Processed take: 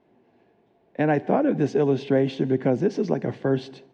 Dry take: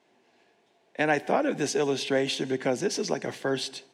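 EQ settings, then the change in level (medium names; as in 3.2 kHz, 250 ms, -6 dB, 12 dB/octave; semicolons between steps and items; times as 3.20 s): distance through air 92 m; tilt EQ -4 dB/octave; 0.0 dB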